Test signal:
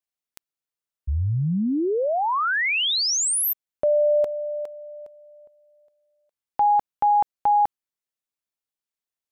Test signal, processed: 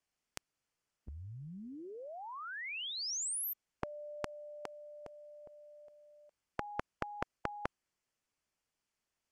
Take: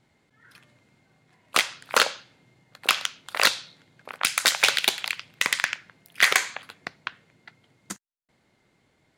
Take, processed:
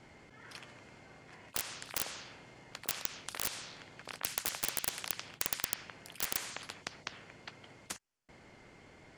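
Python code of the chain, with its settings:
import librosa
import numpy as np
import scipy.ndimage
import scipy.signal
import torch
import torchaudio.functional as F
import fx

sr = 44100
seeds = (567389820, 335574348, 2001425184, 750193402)

y = scipy.signal.sosfilt(scipy.signal.butter(2, 7200.0, 'lowpass', fs=sr, output='sos'), x)
y = fx.low_shelf(y, sr, hz=180.0, db=5.0)
y = (np.mod(10.0 ** (9.0 / 20.0) * y + 1.0, 2.0) - 1.0) / 10.0 ** (9.0 / 20.0)
y = fx.peak_eq(y, sr, hz=3800.0, db=-9.0, octaves=0.26)
y = fx.spectral_comp(y, sr, ratio=4.0)
y = F.gain(torch.from_numpy(y), -3.0).numpy()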